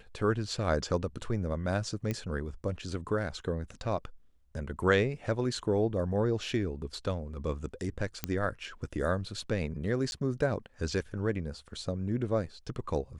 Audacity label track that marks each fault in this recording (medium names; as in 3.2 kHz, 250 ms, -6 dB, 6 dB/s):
2.110000	2.110000	pop -19 dBFS
8.240000	8.240000	pop -14 dBFS
10.110000	10.120000	dropout 11 ms